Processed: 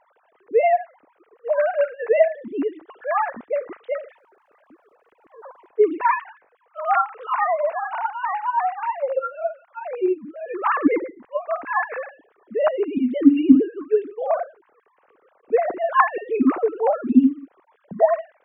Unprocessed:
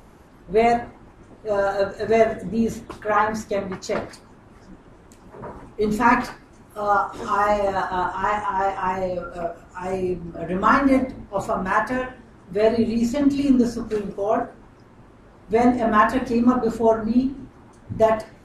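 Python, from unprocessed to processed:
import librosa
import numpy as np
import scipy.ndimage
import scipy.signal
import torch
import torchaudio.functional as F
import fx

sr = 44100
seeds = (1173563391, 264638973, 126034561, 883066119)

y = fx.sine_speech(x, sr)
y = fx.dmg_crackle(y, sr, seeds[0], per_s=370.0, level_db=-73.0, at=(4.07, 5.67), fade=0.02)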